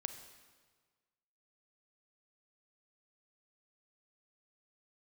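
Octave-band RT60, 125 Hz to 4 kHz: 1.7, 1.5, 1.5, 1.5, 1.4, 1.3 seconds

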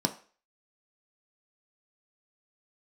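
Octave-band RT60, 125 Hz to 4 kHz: 0.30, 0.35, 0.40, 0.40, 0.40, 0.40 seconds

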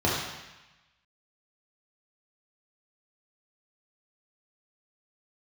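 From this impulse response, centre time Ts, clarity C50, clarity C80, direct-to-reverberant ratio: 70 ms, 0.5 dB, 3.0 dB, −5.5 dB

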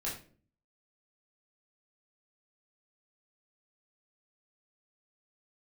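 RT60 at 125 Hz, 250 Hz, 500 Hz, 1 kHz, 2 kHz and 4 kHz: 0.75, 0.65, 0.55, 0.35, 0.35, 0.30 seconds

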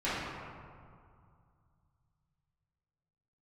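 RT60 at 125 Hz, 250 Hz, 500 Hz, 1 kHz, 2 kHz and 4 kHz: 3.7, 2.6, 2.2, 2.4, 1.6, 1.1 seconds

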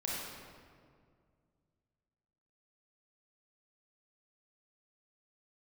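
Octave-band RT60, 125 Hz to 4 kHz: 3.0, 2.6, 2.2, 1.9, 1.6, 1.2 seconds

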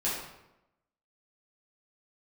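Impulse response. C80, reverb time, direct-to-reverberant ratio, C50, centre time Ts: 4.5 dB, 0.90 s, −9.0 dB, 1.0 dB, 60 ms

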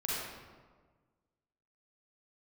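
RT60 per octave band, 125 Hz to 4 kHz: 1.8, 1.7, 1.6, 1.4, 1.1, 0.85 seconds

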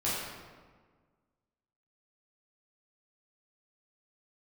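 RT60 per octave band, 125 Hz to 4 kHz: 1.8, 1.8, 1.6, 1.5, 1.2, 0.95 seconds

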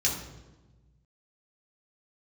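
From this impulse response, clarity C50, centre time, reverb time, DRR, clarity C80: 5.0 dB, 37 ms, 1.2 s, −4.0 dB, 8.0 dB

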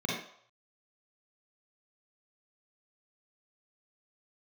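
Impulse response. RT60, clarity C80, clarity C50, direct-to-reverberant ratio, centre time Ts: 0.65 s, 5.0 dB, −0.5 dB, −5.0 dB, 58 ms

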